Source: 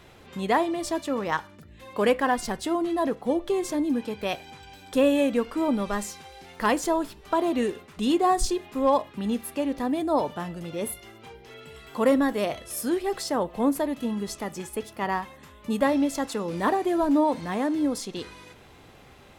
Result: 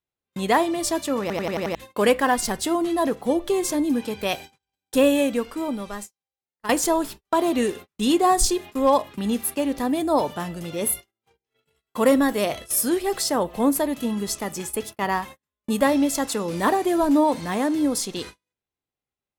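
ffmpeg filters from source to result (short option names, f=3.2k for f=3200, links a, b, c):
-filter_complex "[0:a]asplit=8[a][b][c][d][e][f][g][h];[a]atrim=end=1.302[i];[b]atrim=start=1.208:end=1.302[j];[c]atrim=start=1.208:end=1.302[k];[d]atrim=start=1.208:end=1.302[l];[e]atrim=start=1.208:end=1.302[m];[f]atrim=start=1.208:end=1.302[n];[g]atrim=start=1.748:end=6.69,asetpts=PTS-STARTPTS,afade=t=out:st=3.282:d=1.66:c=qua:silence=0.211349[o];[h]atrim=start=6.69,asetpts=PTS-STARTPTS,afade=t=in:d=0.004:c=hsin:silence=0.211349[p];[i][j]acrossfade=d=0.004:c1=hsin:c2=hsin[q];[q][k]acrossfade=d=0.004:c1=hsin:c2=hsin[r];[r][l]acrossfade=d=0.004:c1=hsin:c2=hsin[s];[s][m]acrossfade=d=0.004:c1=hsin:c2=hsin[t];[t][n]acrossfade=d=0.004:c1=hsin:c2=hsin[u];[o][p]concat=n=2:v=0:a=1[v];[u][v]acrossfade=d=0.004:c1=hsin:c2=hsin,agate=range=-45dB:threshold=-40dB:ratio=16:detection=peak,highshelf=f=5.5k:g=10,volume=3dB"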